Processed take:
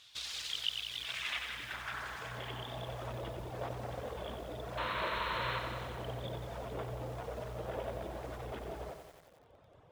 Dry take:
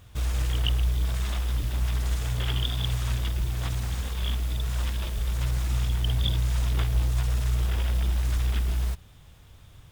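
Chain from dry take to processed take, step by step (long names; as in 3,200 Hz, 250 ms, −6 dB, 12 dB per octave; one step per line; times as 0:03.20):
reverb reduction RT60 0.9 s
brickwall limiter −23.5 dBFS, peak gain reduction 11 dB
sound drawn into the spectrogram noise, 0:04.77–0:05.59, 900–4,300 Hz −31 dBFS
band-pass filter sweep 4,100 Hz → 570 Hz, 0:00.62–0:02.98
healed spectral selection 0:01.92–0:02.80, 670–1,800 Hz both
feedback echo at a low word length 91 ms, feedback 80%, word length 11 bits, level −7 dB
level +9.5 dB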